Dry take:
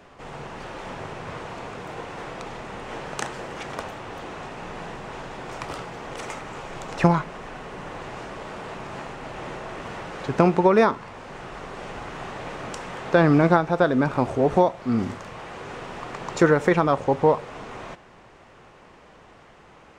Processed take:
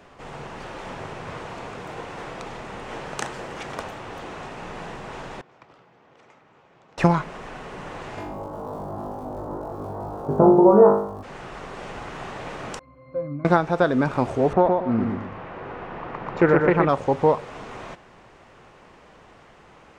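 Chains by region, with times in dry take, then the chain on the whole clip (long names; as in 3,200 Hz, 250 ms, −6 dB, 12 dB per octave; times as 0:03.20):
0:05.41–0:06.98: high-pass filter 96 Hz + noise gate −30 dBFS, range −19 dB + high-frequency loss of the air 120 metres
0:08.16–0:11.22: inverse Chebyshev low-pass filter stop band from 2,600 Hz, stop band 50 dB + surface crackle 100 per second −44 dBFS + flutter between parallel walls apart 3.4 metres, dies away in 0.59 s
0:12.79–0:13.45: high-pass filter 41 Hz + high-frequency loss of the air 110 metres + resonances in every octave C, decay 0.33 s
0:14.53–0:16.89: low-pass filter 2,000 Hz + repeating echo 119 ms, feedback 32%, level −4 dB + highs frequency-modulated by the lows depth 0.19 ms
whole clip: no processing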